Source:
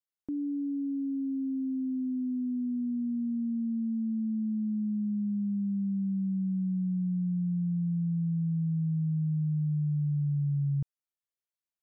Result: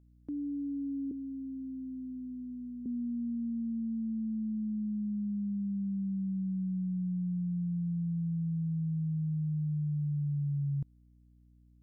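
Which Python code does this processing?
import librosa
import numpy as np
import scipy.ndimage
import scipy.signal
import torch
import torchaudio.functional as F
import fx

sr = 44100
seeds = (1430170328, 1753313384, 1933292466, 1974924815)

y = fx.highpass(x, sr, hz=290.0, slope=24, at=(1.11, 2.86))
y = fx.add_hum(y, sr, base_hz=60, snr_db=27)
y = F.gain(torch.from_numpy(y), -3.5).numpy()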